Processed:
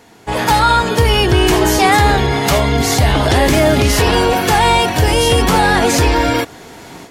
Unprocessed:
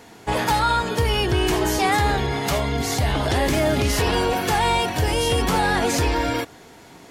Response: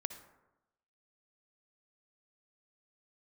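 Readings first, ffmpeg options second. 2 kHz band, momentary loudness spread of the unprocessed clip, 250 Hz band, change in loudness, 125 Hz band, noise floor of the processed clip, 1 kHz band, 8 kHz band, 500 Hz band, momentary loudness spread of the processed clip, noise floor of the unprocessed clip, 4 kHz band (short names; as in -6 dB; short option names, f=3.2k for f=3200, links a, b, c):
+8.5 dB, 4 LU, +8.5 dB, +8.5 dB, +8.5 dB, -37 dBFS, +8.5 dB, +8.5 dB, +8.5 dB, 3 LU, -46 dBFS, +8.5 dB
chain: -af "dynaudnorm=f=260:g=3:m=12.5dB"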